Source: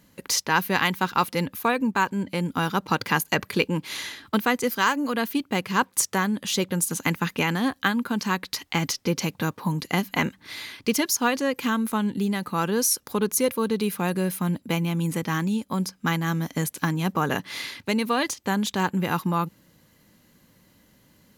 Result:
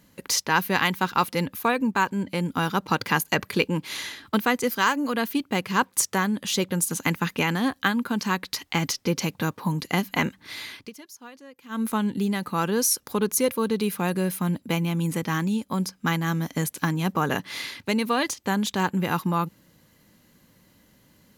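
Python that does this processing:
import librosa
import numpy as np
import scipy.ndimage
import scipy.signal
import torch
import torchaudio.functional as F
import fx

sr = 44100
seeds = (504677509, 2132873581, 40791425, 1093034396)

y = fx.edit(x, sr, fx.fade_down_up(start_s=10.77, length_s=1.05, db=-21.5, fade_s=0.13), tone=tone)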